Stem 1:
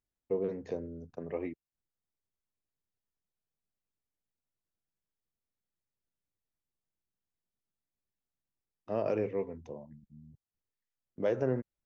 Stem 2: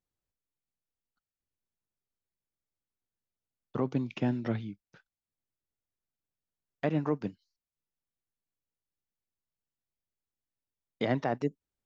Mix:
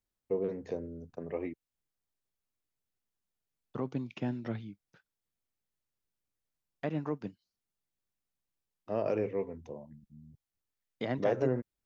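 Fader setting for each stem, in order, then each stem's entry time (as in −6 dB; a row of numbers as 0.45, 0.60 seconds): 0.0, −5.0 decibels; 0.00, 0.00 seconds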